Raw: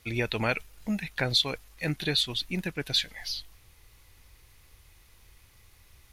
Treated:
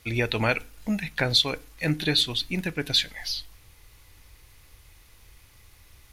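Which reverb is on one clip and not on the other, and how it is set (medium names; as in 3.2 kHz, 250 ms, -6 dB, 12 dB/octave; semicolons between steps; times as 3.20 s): FDN reverb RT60 0.37 s, low-frequency decay 1.3×, high-frequency decay 0.75×, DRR 15.5 dB; trim +3.5 dB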